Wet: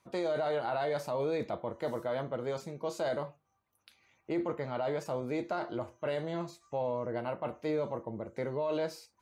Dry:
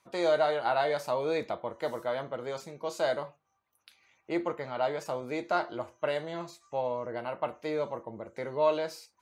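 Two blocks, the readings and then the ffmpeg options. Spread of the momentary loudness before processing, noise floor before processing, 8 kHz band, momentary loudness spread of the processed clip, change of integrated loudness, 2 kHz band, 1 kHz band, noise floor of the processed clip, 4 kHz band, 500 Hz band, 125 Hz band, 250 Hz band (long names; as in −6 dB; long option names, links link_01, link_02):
11 LU, −77 dBFS, −3.5 dB, 6 LU, −3.0 dB, −5.5 dB, −5.5 dB, −77 dBFS, −6.0 dB, −3.0 dB, +4.0 dB, +1.0 dB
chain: -af "lowshelf=frequency=440:gain=9,alimiter=limit=-22dB:level=0:latency=1:release=11,volume=-3dB"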